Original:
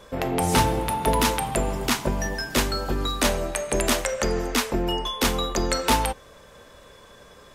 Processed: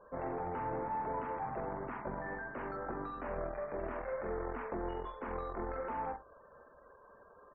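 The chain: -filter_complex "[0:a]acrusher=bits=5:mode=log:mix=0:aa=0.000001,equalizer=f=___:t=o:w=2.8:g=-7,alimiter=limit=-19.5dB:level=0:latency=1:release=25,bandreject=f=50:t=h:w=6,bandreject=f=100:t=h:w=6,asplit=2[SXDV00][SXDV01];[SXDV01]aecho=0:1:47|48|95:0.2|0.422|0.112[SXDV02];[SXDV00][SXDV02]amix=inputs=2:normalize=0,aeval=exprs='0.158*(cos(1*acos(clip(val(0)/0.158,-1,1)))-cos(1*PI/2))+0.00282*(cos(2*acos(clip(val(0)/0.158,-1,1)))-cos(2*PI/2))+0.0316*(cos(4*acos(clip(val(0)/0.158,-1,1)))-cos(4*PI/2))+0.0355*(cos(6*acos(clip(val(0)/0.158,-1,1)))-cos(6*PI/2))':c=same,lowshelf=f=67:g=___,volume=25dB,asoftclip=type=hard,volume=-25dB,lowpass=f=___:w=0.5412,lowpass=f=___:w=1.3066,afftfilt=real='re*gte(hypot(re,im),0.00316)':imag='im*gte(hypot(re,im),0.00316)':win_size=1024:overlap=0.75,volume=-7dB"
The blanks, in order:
140, -11, 1600, 1600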